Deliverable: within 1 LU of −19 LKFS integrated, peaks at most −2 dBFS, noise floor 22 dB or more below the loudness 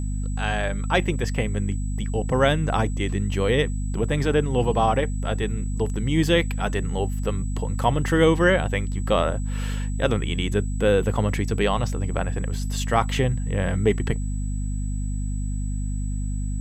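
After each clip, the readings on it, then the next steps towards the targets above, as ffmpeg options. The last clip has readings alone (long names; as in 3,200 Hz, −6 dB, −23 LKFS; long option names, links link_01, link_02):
mains hum 50 Hz; hum harmonics up to 250 Hz; level of the hum −24 dBFS; interfering tone 7,900 Hz; level of the tone −44 dBFS; integrated loudness −24.0 LKFS; sample peak −4.5 dBFS; target loudness −19.0 LKFS
→ -af "bandreject=frequency=50:width_type=h:width=4,bandreject=frequency=100:width_type=h:width=4,bandreject=frequency=150:width_type=h:width=4,bandreject=frequency=200:width_type=h:width=4,bandreject=frequency=250:width_type=h:width=4"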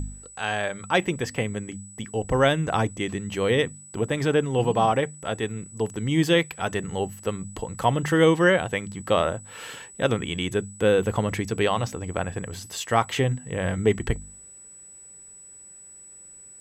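mains hum none found; interfering tone 7,900 Hz; level of the tone −44 dBFS
→ -af "bandreject=frequency=7900:width=30"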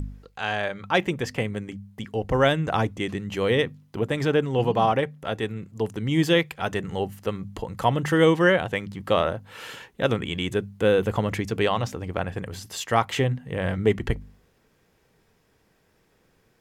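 interfering tone none found; integrated loudness −25.0 LKFS; sample peak −5.5 dBFS; target loudness −19.0 LKFS
→ -af "volume=6dB,alimiter=limit=-2dB:level=0:latency=1"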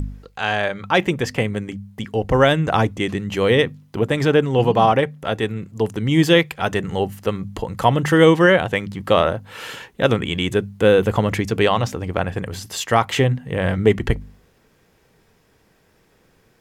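integrated loudness −19.0 LKFS; sample peak −2.0 dBFS; background noise floor −59 dBFS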